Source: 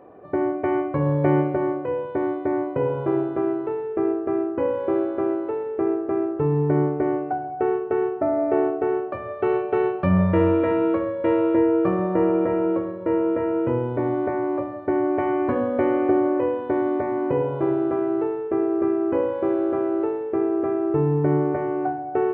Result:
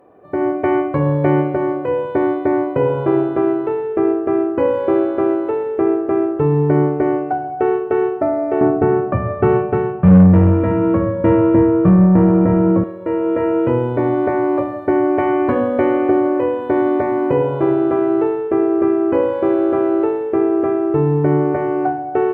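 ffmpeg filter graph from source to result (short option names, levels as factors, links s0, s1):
-filter_complex "[0:a]asettb=1/sr,asplit=3[s0][s1][s2];[s0]atrim=end=8.614[s3];[s1]atrim=start=8.61:end=12.84,asetpts=PTS-STARTPTS,afade=t=in:d=0.004:c=qsin,afade=t=out:st=4.226:d=0.004:c=qsin,lowpass=1700,lowshelf=f=270:t=q:w=1.5:g=11.5,acontrast=78[s4];[s2]atrim=start=12.836[s5];[s3][s4]acrossfade=d=0.004:c1=hsin:c2=qsin[s6];[s6][s5]acrossfade=d=0.004:c1=qsin:c2=hsin,dynaudnorm=f=240:g=3:m=3.76,aemphasis=mode=production:type=cd,volume=0.75"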